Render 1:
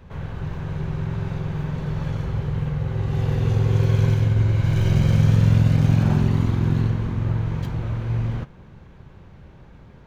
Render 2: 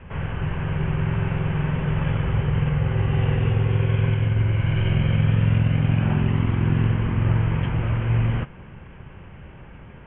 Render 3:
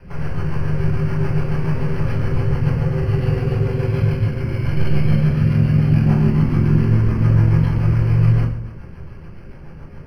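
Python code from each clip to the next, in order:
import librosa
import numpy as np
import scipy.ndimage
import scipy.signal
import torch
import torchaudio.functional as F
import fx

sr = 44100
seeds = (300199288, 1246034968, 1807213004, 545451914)

y1 = scipy.signal.sosfilt(scipy.signal.butter(16, 3100.0, 'lowpass', fs=sr, output='sos'), x)
y1 = fx.high_shelf(y1, sr, hz=2100.0, db=11.5)
y1 = fx.rider(y1, sr, range_db=3, speed_s=0.5)
y2 = fx.rotary(y1, sr, hz=7.0)
y2 = fx.room_shoebox(y2, sr, seeds[0], volume_m3=51.0, walls='mixed', distance_m=0.86)
y2 = np.interp(np.arange(len(y2)), np.arange(len(y2))[::6], y2[::6])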